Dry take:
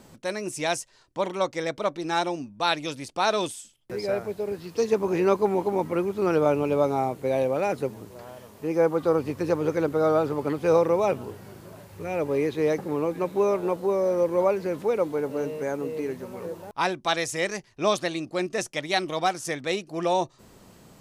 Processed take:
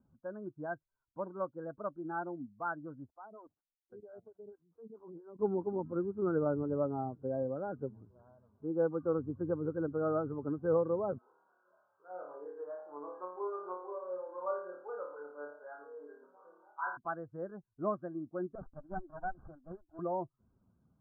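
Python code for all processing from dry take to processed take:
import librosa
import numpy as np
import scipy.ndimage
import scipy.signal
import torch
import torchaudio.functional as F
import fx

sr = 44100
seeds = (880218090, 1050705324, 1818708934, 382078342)

y = fx.chain(x, sr, fx.median_filter(points=9),
    fx.level_steps(step_db=17),
    fx.stagger_phaser(hz=4.4), at=(3.11, 5.39))
y = fx.chain(y, sr, fx.highpass(hz=790.0, slope=12),
    fx.room_flutter(wall_m=4.7, rt60_s=0.81), at=(11.18, 16.97))
y = fx.chain(y, sr, fx.highpass(hz=330.0, slope=24),
    fx.fixed_phaser(hz=440.0, stages=6),
    fx.running_max(window=17), at=(18.55, 19.99))
y = fx.bin_expand(y, sr, power=1.5)
y = scipy.signal.sosfilt(scipy.signal.cheby1(10, 1.0, 1600.0, 'lowpass', fs=sr, output='sos'), y)
y = fx.dynamic_eq(y, sr, hz=800.0, q=1.4, threshold_db=-39.0, ratio=4.0, max_db=-6)
y = y * 10.0 ** (-5.0 / 20.0)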